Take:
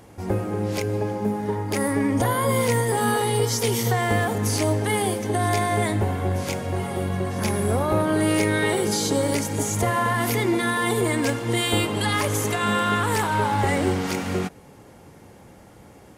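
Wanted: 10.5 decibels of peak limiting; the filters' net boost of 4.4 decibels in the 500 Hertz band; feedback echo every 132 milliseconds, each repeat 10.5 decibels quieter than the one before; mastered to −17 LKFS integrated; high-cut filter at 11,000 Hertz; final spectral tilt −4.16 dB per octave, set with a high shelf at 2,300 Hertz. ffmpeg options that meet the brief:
ffmpeg -i in.wav -af "lowpass=11000,equalizer=frequency=500:width_type=o:gain=5,highshelf=frequency=2300:gain=7,alimiter=limit=-16.5dB:level=0:latency=1,aecho=1:1:132|264|396:0.299|0.0896|0.0269,volume=8dB" out.wav

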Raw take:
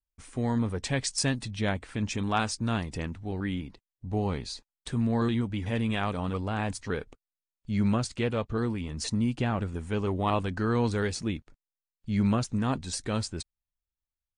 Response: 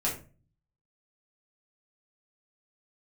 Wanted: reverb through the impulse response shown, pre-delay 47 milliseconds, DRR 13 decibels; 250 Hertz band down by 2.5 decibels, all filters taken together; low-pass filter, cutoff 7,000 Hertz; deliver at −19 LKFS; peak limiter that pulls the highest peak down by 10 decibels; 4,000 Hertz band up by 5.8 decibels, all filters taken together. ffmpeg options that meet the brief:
-filter_complex "[0:a]lowpass=7000,equalizer=frequency=250:width_type=o:gain=-3,equalizer=frequency=4000:width_type=o:gain=8,alimiter=limit=-20.5dB:level=0:latency=1,asplit=2[link_01][link_02];[1:a]atrim=start_sample=2205,adelay=47[link_03];[link_02][link_03]afir=irnorm=-1:irlink=0,volume=-20dB[link_04];[link_01][link_04]amix=inputs=2:normalize=0,volume=12.5dB"

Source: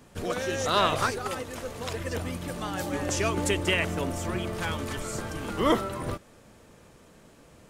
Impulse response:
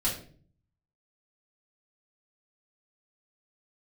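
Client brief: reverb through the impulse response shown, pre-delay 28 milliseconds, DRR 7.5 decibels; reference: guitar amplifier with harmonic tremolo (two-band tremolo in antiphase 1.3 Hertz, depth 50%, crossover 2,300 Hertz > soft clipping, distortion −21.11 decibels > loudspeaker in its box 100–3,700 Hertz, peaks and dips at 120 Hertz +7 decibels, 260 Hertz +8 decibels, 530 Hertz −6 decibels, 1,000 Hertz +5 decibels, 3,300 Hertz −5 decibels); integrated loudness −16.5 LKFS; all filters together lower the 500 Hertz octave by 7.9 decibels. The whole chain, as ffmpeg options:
-filter_complex "[0:a]equalizer=frequency=500:width_type=o:gain=-8.5,asplit=2[link_01][link_02];[1:a]atrim=start_sample=2205,adelay=28[link_03];[link_02][link_03]afir=irnorm=-1:irlink=0,volume=-14.5dB[link_04];[link_01][link_04]amix=inputs=2:normalize=0,acrossover=split=2300[link_05][link_06];[link_05]aeval=exprs='val(0)*(1-0.5/2+0.5/2*cos(2*PI*1.3*n/s))':channel_layout=same[link_07];[link_06]aeval=exprs='val(0)*(1-0.5/2-0.5/2*cos(2*PI*1.3*n/s))':channel_layout=same[link_08];[link_07][link_08]amix=inputs=2:normalize=0,asoftclip=threshold=-18dB,highpass=100,equalizer=frequency=120:width_type=q:width=4:gain=7,equalizer=frequency=260:width_type=q:width=4:gain=8,equalizer=frequency=530:width_type=q:width=4:gain=-6,equalizer=frequency=1000:width_type=q:width=4:gain=5,equalizer=frequency=3300:width_type=q:width=4:gain=-5,lowpass=frequency=3700:width=0.5412,lowpass=frequency=3700:width=1.3066,volume=15.5dB"

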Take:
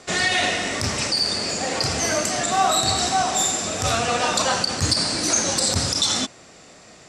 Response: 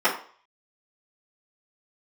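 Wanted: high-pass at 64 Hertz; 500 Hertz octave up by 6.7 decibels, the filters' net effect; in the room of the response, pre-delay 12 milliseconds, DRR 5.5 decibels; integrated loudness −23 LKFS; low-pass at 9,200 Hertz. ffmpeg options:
-filter_complex "[0:a]highpass=64,lowpass=9200,equalizer=frequency=500:width_type=o:gain=8.5,asplit=2[link_01][link_02];[1:a]atrim=start_sample=2205,adelay=12[link_03];[link_02][link_03]afir=irnorm=-1:irlink=0,volume=-23dB[link_04];[link_01][link_04]amix=inputs=2:normalize=0,volume=-4.5dB"

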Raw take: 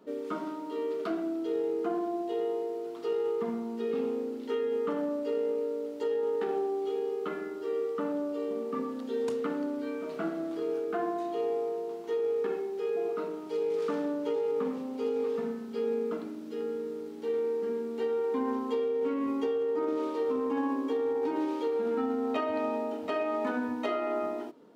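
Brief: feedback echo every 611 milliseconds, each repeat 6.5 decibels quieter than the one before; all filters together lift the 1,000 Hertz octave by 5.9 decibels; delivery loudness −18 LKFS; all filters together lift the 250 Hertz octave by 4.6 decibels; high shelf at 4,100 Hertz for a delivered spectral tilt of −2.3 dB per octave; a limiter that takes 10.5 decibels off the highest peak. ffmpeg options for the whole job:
ffmpeg -i in.wav -af "equalizer=frequency=250:width_type=o:gain=5,equalizer=frequency=1000:width_type=o:gain=7,highshelf=frequency=4100:gain=3,alimiter=level_in=1dB:limit=-24dB:level=0:latency=1,volume=-1dB,aecho=1:1:611|1222|1833|2444|3055|3666:0.473|0.222|0.105|0.0491|0.0231|0.0109,volume=13.5dB" out.wav

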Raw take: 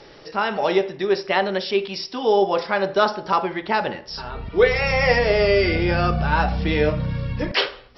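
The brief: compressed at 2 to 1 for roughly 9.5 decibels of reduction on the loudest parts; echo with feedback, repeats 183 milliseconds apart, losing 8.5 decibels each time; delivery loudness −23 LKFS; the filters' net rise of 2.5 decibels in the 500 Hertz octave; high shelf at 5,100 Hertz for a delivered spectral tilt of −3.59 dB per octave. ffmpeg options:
ffmpeg -i in.wav -af "equalizer=frequency=500:width_type=o:gain=3,highshelf=frequency=5100:gain=4,acompressor=threshold=-26dB:ratio=2,aecho=1:1:183|366|549|732:0.376|0.143|0.0543|0.0206,volume=2.5dB" out.wav

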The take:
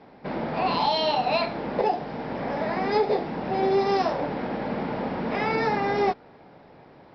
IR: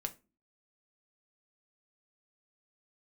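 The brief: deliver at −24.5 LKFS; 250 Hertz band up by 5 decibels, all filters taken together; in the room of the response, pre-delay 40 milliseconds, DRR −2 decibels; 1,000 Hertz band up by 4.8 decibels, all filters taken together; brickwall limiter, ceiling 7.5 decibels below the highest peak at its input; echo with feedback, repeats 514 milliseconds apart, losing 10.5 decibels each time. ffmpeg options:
-filter_complex "[0:a]equalizer=frequency=250:width_type=o:gain=6,equalizer=frequency=1000:width_type=o:gain=6,alimiter=limit=-14.5dB:level=0:latency=1,aecho=1:1:514|1028|1542:0.299|0.0896|0.0269,asplit=2[link_01][link_02];[1:a]atrim=start_sample=2205,adelay=40[link_03];[link_02][link_03]afir=irnorm=-1:irlink=0,volume=2.5dB[link_04];[link_01][link_04]amix=inputs=2:normalize=0,volume=-4.5dB"

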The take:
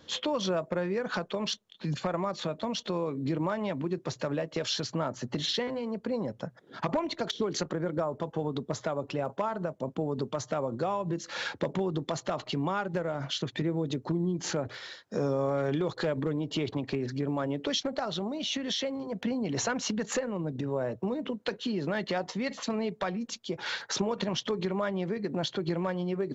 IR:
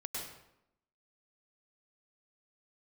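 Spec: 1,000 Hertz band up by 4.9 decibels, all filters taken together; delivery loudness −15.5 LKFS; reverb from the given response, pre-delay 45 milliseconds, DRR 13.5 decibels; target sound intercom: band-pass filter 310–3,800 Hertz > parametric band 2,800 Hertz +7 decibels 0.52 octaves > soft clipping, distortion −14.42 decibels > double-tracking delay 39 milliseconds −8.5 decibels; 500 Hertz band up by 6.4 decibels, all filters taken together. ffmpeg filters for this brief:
-filter_complex "[0:a]equalizer=frequency=500:width_type=o:gain=7.5,equalizer=frequency=1000:width_type=o:gain=3.5,asplit=2[link_01][link_02];[1:a]atrim=start_sample=2205,adelay=45[link_03];[link_02][link_03]afir=irnorm=-1:irlink=0,volume=-14dB[link_04];[link_01][link_04]amix=inputs=2:normalize=0,highpass=310,lowpass=3800,equalizer=frequency=2800:width_type=o:width=0.52:gain=7,asoftclip=threshold=-21.5dB,asplit=2[link_05][link_06];[link_06]adelay=39,volume=-8.5dB[link_07];[link_05][link_07]amix=inputs=2:normalize=0,volume=14.5dB"

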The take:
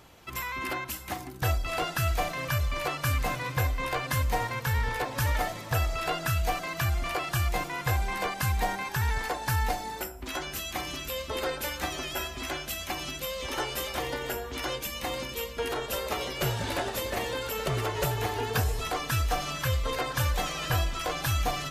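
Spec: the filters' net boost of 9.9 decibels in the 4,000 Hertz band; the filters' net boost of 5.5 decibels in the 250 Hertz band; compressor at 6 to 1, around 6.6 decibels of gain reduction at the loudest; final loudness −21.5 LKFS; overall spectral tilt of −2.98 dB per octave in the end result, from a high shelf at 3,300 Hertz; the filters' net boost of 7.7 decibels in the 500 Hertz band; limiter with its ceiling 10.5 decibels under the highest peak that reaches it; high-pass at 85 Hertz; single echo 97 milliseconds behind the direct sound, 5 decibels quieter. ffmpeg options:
ffmpeg -i in.wav -af "highpass=85,equalizer=frequency=250:width_type=o:gain=5,equalizer=frequency=500:width_type=o:gain=7.5,highshelf=frequency=3300:gain=9,equalizer=frequency=4000:width_type=o:gain=6.5,acompressor=threshold=-26dB:ratio=6,alimiter=limit=-23.5dB:level=0:latency=1,aecho=1:1:97:0.562,volume=9dB" out.wav

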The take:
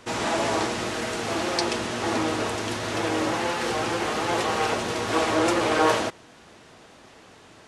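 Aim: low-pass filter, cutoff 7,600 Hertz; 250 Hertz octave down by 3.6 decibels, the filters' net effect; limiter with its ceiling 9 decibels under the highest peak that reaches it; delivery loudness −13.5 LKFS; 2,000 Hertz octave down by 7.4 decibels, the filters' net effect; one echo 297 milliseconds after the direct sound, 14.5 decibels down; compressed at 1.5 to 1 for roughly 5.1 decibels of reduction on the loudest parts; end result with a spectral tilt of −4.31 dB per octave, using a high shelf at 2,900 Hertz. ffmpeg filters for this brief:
ffmpeg -i in.wav -af "lowpass=7600,equalizer=frequency=250:width_type=o:gain=-5,equalizer=frequency=2000:width_type=o:gain=-8.5,highshelf=frequency=2900:gain=-3.5,acompressor=threshold=-32dB:ratio=1.5,alimiter=level_in=0.5dB:limit=-24dB:level=0:latency=1,volume=-0.5dB,aecho=1:1:297:0.188,volume=20dB" out.wav

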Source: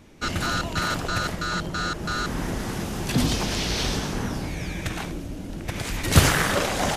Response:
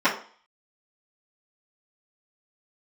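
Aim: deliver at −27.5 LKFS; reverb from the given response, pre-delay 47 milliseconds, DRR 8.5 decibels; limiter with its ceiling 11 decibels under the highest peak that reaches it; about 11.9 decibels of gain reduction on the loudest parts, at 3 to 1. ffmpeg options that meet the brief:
-filter_complex "[0:a]acompressor=threshold=-27dB:ratio=3,alimiter=level_in=0.5dB:limit=-24dB:level=0:latency=1,volume=-0.5dB,asplit=2[link_01][link_02];[1:a]atrim=start_sample=2205,adelay=47[link_03];[link_02][link_03]afir=irnorm=-1:irlink=0,volume=-26.5dB[link_04];[link_01][link_04]amix=inputs=2:normalize=0,volume=6dB"

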